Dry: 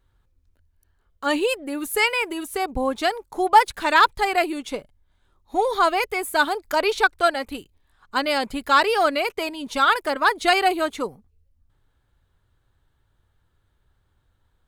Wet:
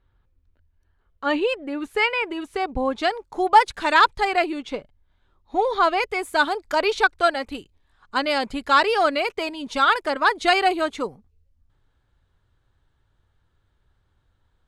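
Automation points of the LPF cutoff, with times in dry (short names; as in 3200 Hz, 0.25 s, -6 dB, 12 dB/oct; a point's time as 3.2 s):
2.17 s 3400 Hz
3.97 s 8500 Hz
4.65 s 4400 Hz
5.77 s 4400 Hz
6.19 s 7300 Hz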